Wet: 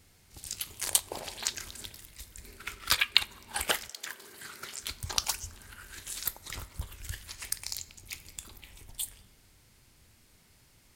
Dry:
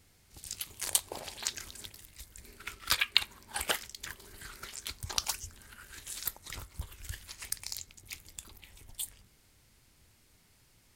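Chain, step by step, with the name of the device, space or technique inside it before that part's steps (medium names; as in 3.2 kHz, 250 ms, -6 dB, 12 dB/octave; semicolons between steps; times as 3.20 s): compressed reverb return (on a send at -9.5 dB: reverberation RT60 1.1 s, pre-delay 22 ms + compression, threshold -45 dBFS, peak gain reduction 18 dB); 3.88–4.82 s: on the sum: high-pass 400 Hz -> 100 Hz 12 dB/octave; trim +2.5 dB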